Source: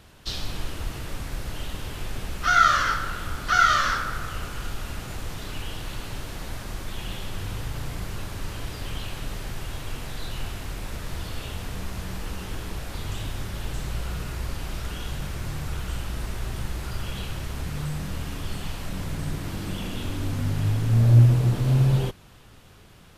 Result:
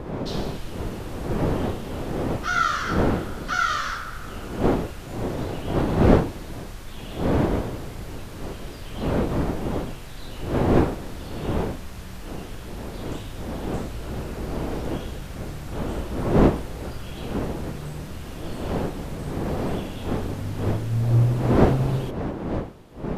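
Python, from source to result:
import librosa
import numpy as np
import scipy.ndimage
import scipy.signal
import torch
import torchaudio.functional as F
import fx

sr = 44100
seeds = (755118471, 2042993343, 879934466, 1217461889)

y = fx.dmg_wind(x, sr, seeds[0], corner_hz=410.0, level_db=-22.0)
y = y * librosa.db_to_amplitude(-4.5)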